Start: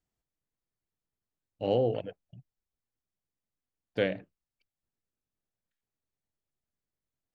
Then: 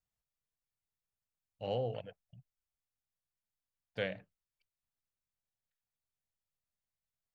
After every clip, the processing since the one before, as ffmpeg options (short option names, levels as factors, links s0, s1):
-af "equalizer=f=320:t=o:w=0.91:g=-13,volume=0.596"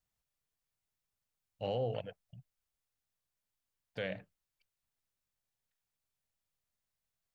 -af "alimiter=level_in=1.88:limit=0.0631:level=0:latency=1:release=60,volume=0.531,volume=1.5"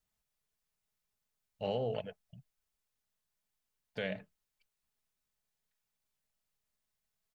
-af "aecho=1:1:4.7:0.38,volume=1.12"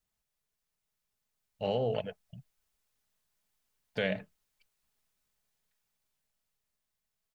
-af "dynaudnorm=f=260:g=13:m=2"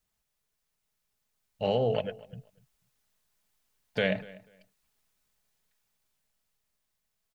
-filter_complex "[0:a]asplit=2[s0][s1];[s1]adelay=244,lowpass=f=3800:p=1,volume=0.0944,asplit=2[s2][s3];[s3]adelay=244,lowpass=f=3800:p=1,volume=0.21[s4];[s0][s2][s4]amix=inputs=3:normalize=0,volume=1.58"